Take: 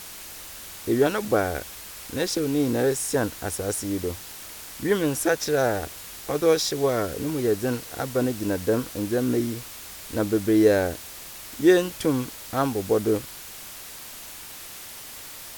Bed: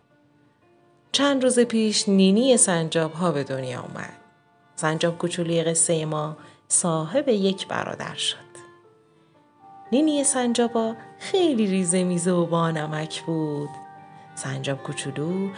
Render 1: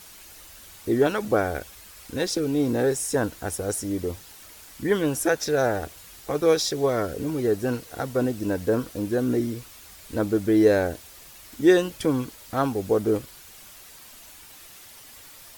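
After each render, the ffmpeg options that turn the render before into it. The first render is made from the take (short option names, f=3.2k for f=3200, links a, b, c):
-af "afftdn=nr=8:nf=-41"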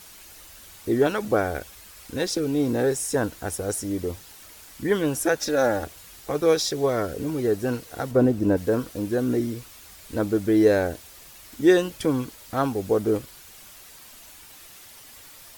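-filter_complex "[0:a]asettb=1/sr,asplit=3[a][b][c];[a]atrim=end=5.404[d];[b]atrim=start=5.4:end=5.84,asetpts=PTS-STARTPTS,afade=t=in:d=0.004:c=qsin,afade=t=out:st=0.436:d=0.004:c=qsin,aecho=1:1:3.6:0.58,atrim=end_sample=19404[e];[c]atrim=start=5.836[f];[d][e]acrossfade=d=0.004:c1=hsin:c2=qsin[g];[g][f]acrossfade=d=0.004:c1=qsin:c2=hsin,asettb=1/sr,asplit=3[h][i][j];[h]atrim=end=8.114[k];[i]atrim=start=8.11:end=8.57,asetpts=PTS-STARTPTS,afade=t=in:d=0.004:c=qsin,afade=t=out:st=0.456:d=0.004:c=qsin,tiltshelf=f=1.5k:g=6[l];[j]atrim=start=8.566[m];[k][l]acrossfade=d=0.004:c1=hsin:c2=qsin[n];[n][m]acrossfade=d=0.004:c1=qsin:c2=hsin"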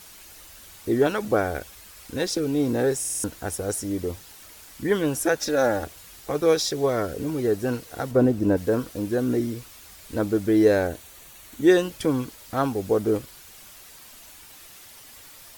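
-filter_complex "[0:a]asettb=1/sr,asplit=3[a][b][c];[a]atrim=end=10.874[d];[b]atrim=start=10.87:end=11.71,asetpts=PTS-STARTPTS,afade=t=in:d=0.004:c=qsin,afade=t=out:st=0.836:d=0.004:c=qsin,bandreject=f=5.1k:w=6.7[e];[c]atrim=start=11.706[f];[d][e]acrossfade=d=0.004:c1=hsin:c2=qsin[g];[g][f]acrossfade=d=0.004:c1=qsin:c2=hsin,asplit=6[h][i][j][k][l][m];[h]atrim=end=3.042[n];[i]atrim=start=2.988:end=3.042[o];[j]atrim=start=2.988:end=3.042[p];[k]atrim=start=2.988:end=3.042[q];[l]atrim=start=2.988:end=3.042[r];[m]atrim=start=3.238[s];[n][o]acrossfade=d=0.004:c1=hsin:c2=hsin[t];[t][p]acrossfade=d=0.004:c1=hsin:c2=hsin[u];[u][q]acrossfade=d=0.004:c1=hsin:c2=hsin[v];[v][r]acrossfade=d=0.004:c1=hsin:c2=hsin[w];[w][s]acrossfade=d=0.004:c1=hsin:c2=hsin"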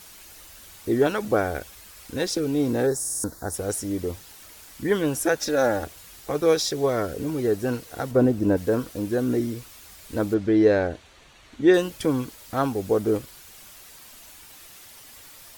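-filter_complex "[0:a]asplit=3[a][b][c];[a]afade=t=out:st=2.86:d=0.02[d];[b]asuperstop=centerf=2700:order=4:qfactor=1,afade=t=in:st=2.86:d=0.02,afade=t=out:st=3.53:d=0.02[e];[c]afade=t=in:st=3.53:d=0.02[f];[d][e][f]amix=inputs=3:normalize=0,asettb=1/sr,asplit=3[g][h][i];[g]atrim=end=10.344[j];[h]atrim=start=10.34:end=11.74,asetpts=PTS-STARTPTS,afade=t=in:d=0.004:c=qsin,afade=t=out:st=1.396:d=0.004:c=qsin,lowpass=4.3k[k];[i]atrim=start=11.736[l];[j][k]acrossfade=d=0.004:c1=hsin:c2=qsin[m];[m][l]acrossfade=d=0.004:c1=qsin:c2=hsin"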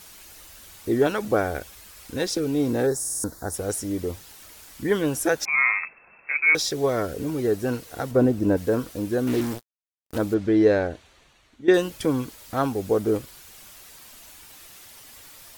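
-filter_complex "[0:a]asettb=1/sr,asplit=3[a][b][c];[a]atrim=end=5.454[d];[b]atrim=start=5.45:end=6.55,asetpts=PTS-STARTPTS,afade=t=in:d=0.004:c=qsin,afade=t=out:st=1.096:d=0.004:c=qsin,lowpass=f=2.3k:t=q:w=0.5098,lowpass=f=2.3k:t=q:w=0.6013,lowpass=f=2.3k:t=q:w=0.9,lowpass=f=2.3k:t=q:w=2.563,afreqshift=-2700[e];[c]atrim=start=6.546[f];[d][e]acrossfade=d=0.004:c1=hsin:c2=qsin[g];[g][f]acrossfade=d=0.004:c1=qsin:c2=hsin,asettb=1/sr,asplit=3[h][i][j];[h]atrim=end=9.274[k];[i]atrim=start=9.27:end=10.18,asetpts=PTS-STARTPTS,afade=t=in:d=0.004:c=qsin,afade=t=out:st=0.906:d=0.004:c=qsin,acrusher=bits=4:mix=0:aa=0.5[l];[j]atrim=start=10.176[m];[k][l]acrossfade=d=0.004:c1=hsin:c2=qsin[n];[n][m]acrossfade=d=0.004:c1=qsin:c2=hsin,asplit=2[o][p];[o]atrim=end=11.68,asetpts=PTS-STARTPTS,afade=t=out:st=10.71:d=0.97:silence=0.199526[q];[p]atrim=start=11.68,asetpts=PTS-STARTPTS,afade=t=in:d=0.004:c=hsin:silence=0.199526[r];[q][r]concat=n=2:v=0:a=1"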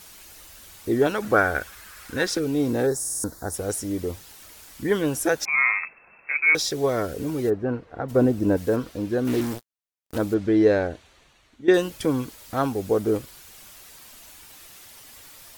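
-filter_complex "[0:a]asettb=1/sr,asplit=3[a][b][c];[a]atrim=end=1.224[d];[b]atrim=start=1.22:end=2.39,asetpts=PTS-STARTPTS,afade=t=in:d=0.004:c=qsin,afade=t=out:st=1.166:d=0.004:c=qsin,equalizer=f=1.5k:t=o:w=0.93:g=11[e];[c]atrim=start=2.386[f];[d][e]acrossfade=d=0.004:c1=hsin:c2=qsin[g];[g][f]acrossfade=d=0.004:c1=qsin:c2=hsin,asplit=3[h][i][j];[h]afade=t=out:st=7.49:d=0.02[k];[i]lowpass=1.5k,afade=t=in:st=7.49:d=0.02,afade=t=out:st=8.08:d=0.02[l];[j]afade=t=in:st=8.08:d=0.02[m];[k][l][m]amix=inputs=3:normalize=0,asettb=1/sr,asplit=3[n][o][p];[n]atrim=end=8.764[q];[o]atrim=start=8.76:end=9.25,asetpts=PTS-STARTPTS,afade=t=in:d=0.004:c=qsin,afade=t=out:st=0.486:d=0.004:c=qsin,acrossover=split=5500[r][s];[s]acompressor=threshold=-54dB:ratio=4:attack=1:release=60[t];[r][t]amix=inputs=2:normalize=0[u];[p]atrim=start=9.246[v];[q][u]acrossfade=d=0.004:c1=hsin:c2=qsin[w];[w][v]acrossfade=d=0.004:c1=qsin:c2=hsin"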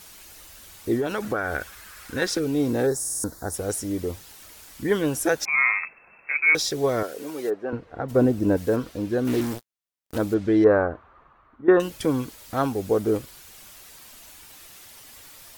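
-filter_complex "[0:a]asettb=1/sr,asplit=3[a][b][c];[a]atrim=end=0.954[d];[b]atrim=start=0.95:end=2.22,asetpts=PTS-STARTPTS,afade=t=in:d=0.004:c=qsin,afade=t=out:st=1.266:d=0.004:c=qsin,acompressor=threshold=-21dB:ratio=6:attack=3.2:release=140:knee=1:detection=peak[e];[c]atrim=start=2.216[f];[d][e]acrossfade=d=0.004:c1=hsin:c2=qsin[g];[g][f]acrossfade=d=0.004:c1=qsin:c2=hsin,asettb=1/sr,asplit=3[h][i][j];[h]atrim=end=7.034[k];[i]atrim=start=7.03:end=7.73,asetpts=PTS-STARTPTS,afade=t=in:d=0.004:c=qsin,afade=t=out:st=0.696:d=0.004:c=qsin,highpass=420[l];[j]atrim=start=7.726[m];[k][l]acrossfade=d=0.004:c1=hsin:c2=qsin[n];[n][m]acrossfade=d=0.004:c1=qsin:c2=hsin,asettb=1/sr,asplit=3[o][p][q];[o]atrim=end=10.644[r];[p]atrim=start=10.64:end=11.8,asetpts=PTS-STARTPTS,afade=t=in:d=0.004:c=qsin,afade=t=out:st=1.156:d=0.004:c=qsin,lowpass=f=1.2k:t=q:w=4.3[s];[q]atrim=start=11.796[t];[r][s]acrossfade=d=0.004:c1=hsin:c2=qsin[u];[u][t]acrossfade=d=0.004:c1=qsin:c2=hsin"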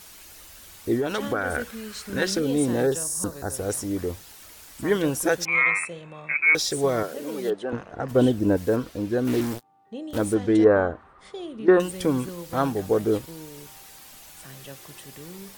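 -filter_complex "[1:a]volume=-16dB[a];[0:a][a]amix=inputs=2:normalize=0"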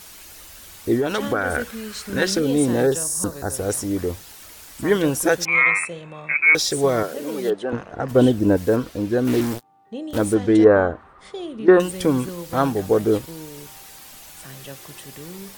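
-af "volume=4dB"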